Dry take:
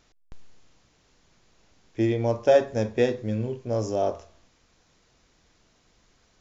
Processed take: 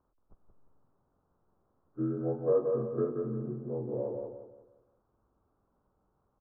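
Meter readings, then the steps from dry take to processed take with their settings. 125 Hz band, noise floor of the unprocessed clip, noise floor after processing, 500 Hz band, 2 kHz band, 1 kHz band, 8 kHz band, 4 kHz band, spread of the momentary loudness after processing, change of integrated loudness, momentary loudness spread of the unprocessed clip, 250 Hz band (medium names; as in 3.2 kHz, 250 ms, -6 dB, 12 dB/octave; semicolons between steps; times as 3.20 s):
-8.0 dB, -64 dBFS, -76 dBFS, -7.5 dB, under -25 dB, -15.0 dB, no reading, under -40 dB, 13 LU, -8.0 dB, 9 LU, -7.0 dB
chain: frequency axis rescaled in octaves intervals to 81%; steep low-pass 1.3 kHz 48 dB/octave; feedback delay 177 ms, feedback 36%, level -4.5 dB; trim -8.5 dB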